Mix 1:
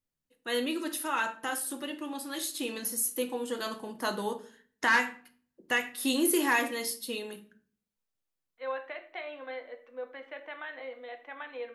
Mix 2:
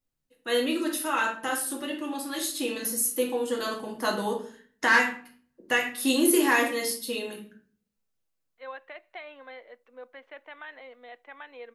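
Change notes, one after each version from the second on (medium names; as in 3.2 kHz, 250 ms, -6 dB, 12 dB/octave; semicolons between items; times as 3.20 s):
first voice: send +10.0 dB; second voice: send off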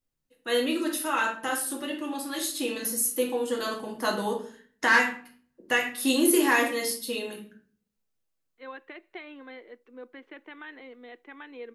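second voice: add resonant low shelf 470 Hz +7.5 dB, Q 3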